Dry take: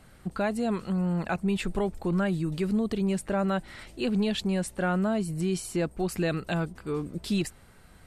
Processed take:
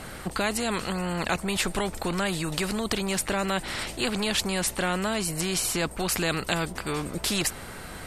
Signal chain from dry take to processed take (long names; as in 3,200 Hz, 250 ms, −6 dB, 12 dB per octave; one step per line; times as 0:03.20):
every bin compressed towards the loudest bin 2 to 1
level +8 dB